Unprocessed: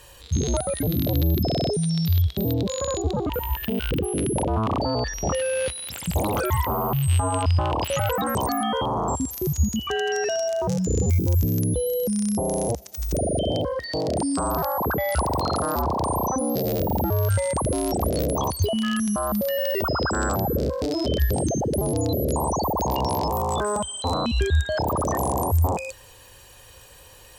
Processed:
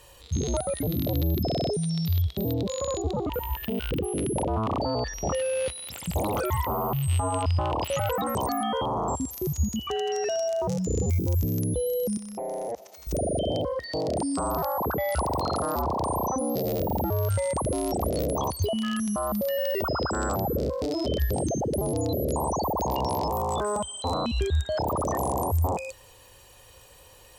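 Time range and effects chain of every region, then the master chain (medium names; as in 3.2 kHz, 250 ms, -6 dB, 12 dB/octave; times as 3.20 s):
12.17–13.07 s: high-pass 450 Hz 6 dB/octave + compression 12:1, threshold -30 dBFS + overdrive pedal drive 18 dB, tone 1.5 kHz, clips at -17.5 dBFS
whole clip: peaking EQ 610 Hz +2.5 dB 1.8 oct; band-stop 1.6 kHz, Q 11; trim -4.5 dB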